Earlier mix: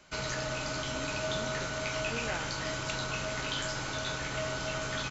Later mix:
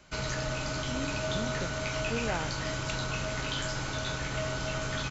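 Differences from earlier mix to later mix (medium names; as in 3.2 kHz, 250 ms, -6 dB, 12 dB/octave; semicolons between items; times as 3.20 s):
speech +5.0 dB; master: add bass shelf 180 Hz +7 dB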